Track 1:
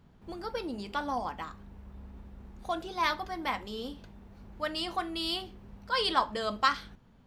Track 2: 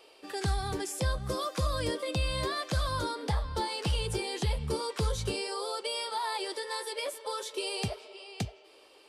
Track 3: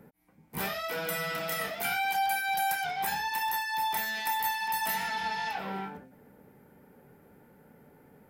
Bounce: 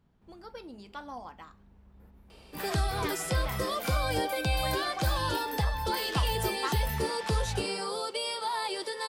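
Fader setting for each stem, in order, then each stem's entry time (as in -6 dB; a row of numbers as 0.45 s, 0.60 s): -9.0 dB, +1.0 dB, -7.0 dB; 0.00 s, 2.30 s, 2.00 s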